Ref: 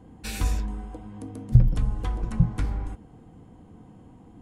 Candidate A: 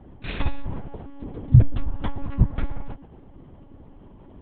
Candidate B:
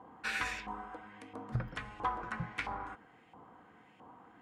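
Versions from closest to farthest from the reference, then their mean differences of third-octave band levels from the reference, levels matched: A, B; 4.5 dB, 7.0 dB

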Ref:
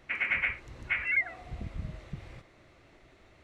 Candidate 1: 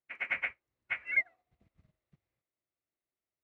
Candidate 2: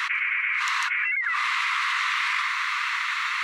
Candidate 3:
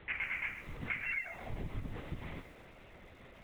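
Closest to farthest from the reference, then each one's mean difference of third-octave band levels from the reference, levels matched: 3, 1, 2; 7.5 dB, 12.0 dB, 17.5 dB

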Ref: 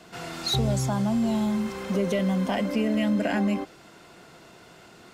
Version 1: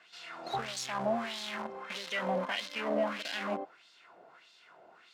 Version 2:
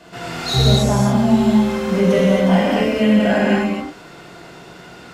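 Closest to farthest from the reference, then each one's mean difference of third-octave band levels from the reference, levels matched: 2, 1; 3.5 dB, 8.0 dB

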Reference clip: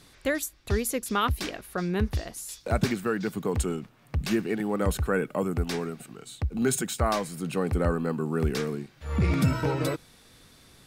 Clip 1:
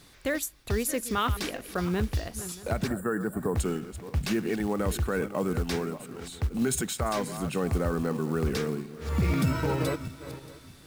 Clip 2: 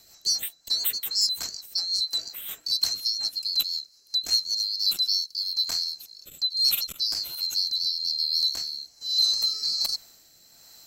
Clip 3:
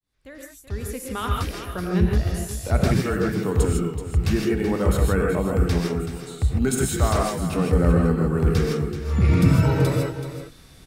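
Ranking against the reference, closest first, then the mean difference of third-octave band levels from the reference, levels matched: 1, 3, 2; 4.5 dB, 7.5 dB, 18.5 dB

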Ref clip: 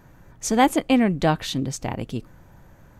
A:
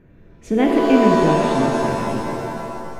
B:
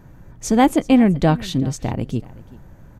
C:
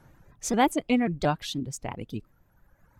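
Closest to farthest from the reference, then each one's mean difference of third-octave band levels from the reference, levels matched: B, C, A; 3.0 dB, 4.5 dB, 10.5 dB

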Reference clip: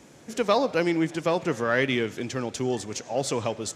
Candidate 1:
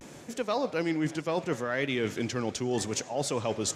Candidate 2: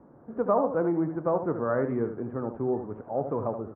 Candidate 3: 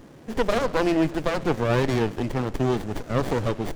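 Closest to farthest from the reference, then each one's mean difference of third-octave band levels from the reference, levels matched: 1, 3, 2; 3.5 dB, 5.5 dB, 10.0 dB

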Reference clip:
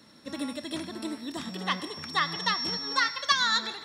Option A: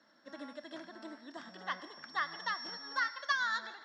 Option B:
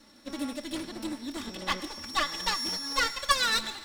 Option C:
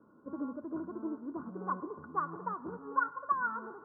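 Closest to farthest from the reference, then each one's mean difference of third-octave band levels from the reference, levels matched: B, A, C; 4.5 dB, 7.5 dB, 13.5 dB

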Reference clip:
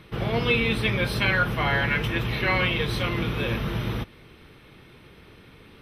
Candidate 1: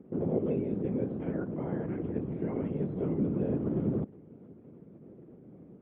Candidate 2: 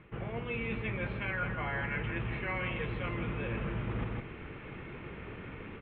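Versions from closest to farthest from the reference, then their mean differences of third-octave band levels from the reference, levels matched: 2, 1; 9.0 dB, 13.5 dB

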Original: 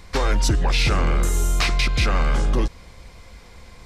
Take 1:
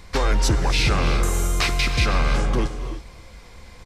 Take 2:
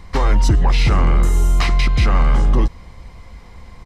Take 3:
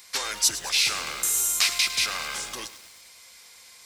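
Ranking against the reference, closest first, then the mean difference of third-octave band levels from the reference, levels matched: 1, 2, 3; 2.0 dB, 3.5 dB, 12.0 dB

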